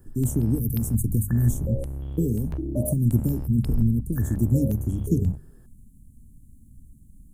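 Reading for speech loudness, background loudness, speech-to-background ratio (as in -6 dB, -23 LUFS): -25.5 LUFS, -33.5 LUFS, 8.0 dB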